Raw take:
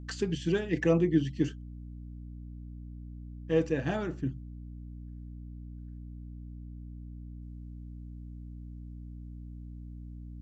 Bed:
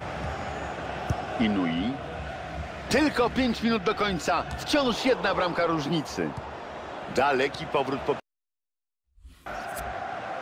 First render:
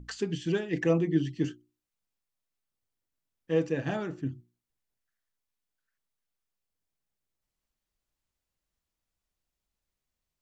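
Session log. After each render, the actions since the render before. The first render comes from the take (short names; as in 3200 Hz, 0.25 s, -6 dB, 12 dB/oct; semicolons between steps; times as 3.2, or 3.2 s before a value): notches 60/120/180/240/300/360 Hz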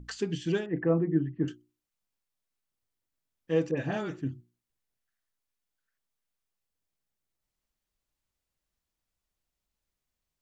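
0.66–1.48 Chebyshev low-pass 1500 Hz, order 3; 3.71–4.18 dispersion highs, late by 67 ms, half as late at 2000 Hz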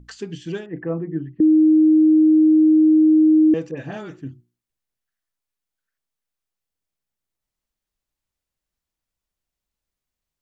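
1.4–3.54 bleep 312 Hz -10 dBFS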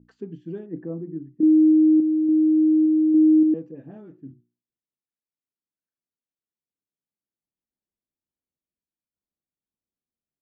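random-step tremolo; band-pass 260 Hz, Q 1.2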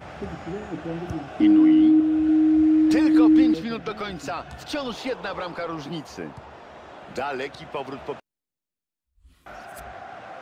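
add bed -5.5 dB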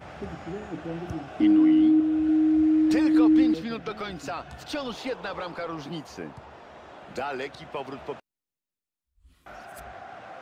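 gain -3 dB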